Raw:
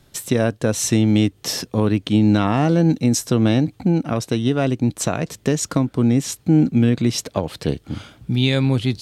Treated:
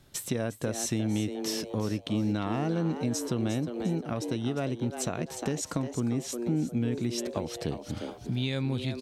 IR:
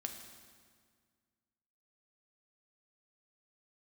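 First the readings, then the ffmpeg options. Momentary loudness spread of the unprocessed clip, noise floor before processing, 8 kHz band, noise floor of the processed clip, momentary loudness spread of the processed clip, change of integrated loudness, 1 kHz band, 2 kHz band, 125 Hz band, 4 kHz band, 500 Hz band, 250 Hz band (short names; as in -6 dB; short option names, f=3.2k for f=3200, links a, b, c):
8 LU, -55 dBFS, -10.0 dB, -46 dBFS, 4 LU, -12.0 dB, -11.0 dB, -11.5 dB, -12.5 dB, -11.0 dB, -10.5 dB, -12.5 dB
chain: -filter_complex "[0:a]asplit=5[a][b][c][d][e];[b]adelay=354,afreqshift=120,volume=-10dB[f];[c]adelay=708,afreqshift=240,volume=-19.6dB[g];[d]adelay=1062,afreqshift=360,volume=-29.3dB[h];[e]adelay=1416,afreqshift=480,volume=-38.9dB[i];[a][f][g][h][i]amix=inputs=5:normalize=0,acompressor=threshold=-27dB:ratio=2,volume=-5dB"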